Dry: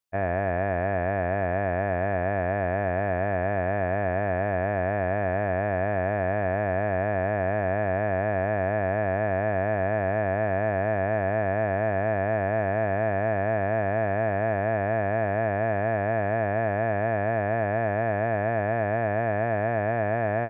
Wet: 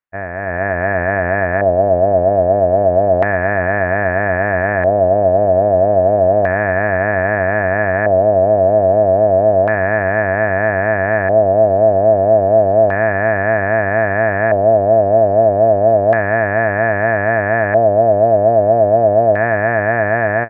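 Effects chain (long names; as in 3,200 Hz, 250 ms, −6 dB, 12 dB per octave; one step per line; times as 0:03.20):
reverb reduction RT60 1.6 s
automatic gain control gain up to 15 dB
auto-filter low-pass square 0.31 Hz 620–1,800 Hz
level −1 dB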